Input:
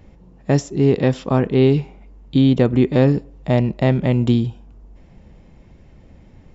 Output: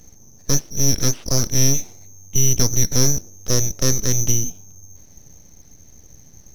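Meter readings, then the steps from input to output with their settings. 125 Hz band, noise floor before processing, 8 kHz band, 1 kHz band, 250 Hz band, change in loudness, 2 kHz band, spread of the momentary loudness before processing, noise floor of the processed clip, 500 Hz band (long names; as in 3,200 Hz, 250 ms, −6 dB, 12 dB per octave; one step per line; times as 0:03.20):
−4.5 dB, −48 dBFS, can't be measured, −8.5 dB, −10.5 dB, −1.5 dB, −4.5 dB, 7 LU, −47 dBFS, −10.5 dB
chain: voice inversion scrambler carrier 3,200 Hz
full-wave rectification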